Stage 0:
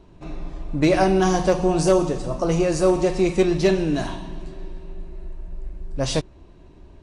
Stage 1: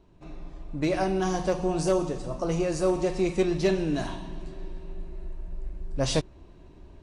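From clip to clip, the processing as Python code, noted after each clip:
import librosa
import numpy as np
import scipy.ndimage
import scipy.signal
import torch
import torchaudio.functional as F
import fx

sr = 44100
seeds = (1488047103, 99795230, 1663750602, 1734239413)

y = fx.rider(x, sr, range_db=10, speed_s=2.0)
y = y * 10.0 ** (-6.5 / 20.0)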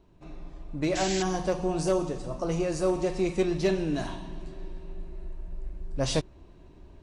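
y = fx.spec_paint(x, sr, seeds[0], shape='noise', start_s=0.95, length_s=0.28, low_hz=1500.0, high_hz=7900.0, level_db=-33.0)
y = y * 10.0 ** (-1.5 / 20.0)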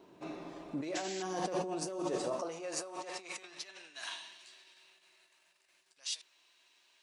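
y = fx.over_compress(x, sr, threshold_db=-35.0, ratio=-1.0)
y = fx.filter_sweep_highpass(y, sr, from_hz=300.0, to_hz=2800.0, start_s=1.97, end_s=4.44, q=0.85)
y = y * 10.0 ** (1.5 / 20.0)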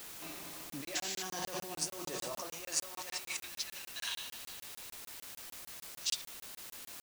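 y = fx.tone_stack(x, sr, knobs='5-5-5')
y = fx.quant_dither(y, sr, seeds[1], bits=10, dither='triangular')
y = fx.buffer_crackle(y, sr, first_s=0.7, period_s=0.15, block=1024, kind='zero')
y = y * 10.0 ** (12.0 / 20.0)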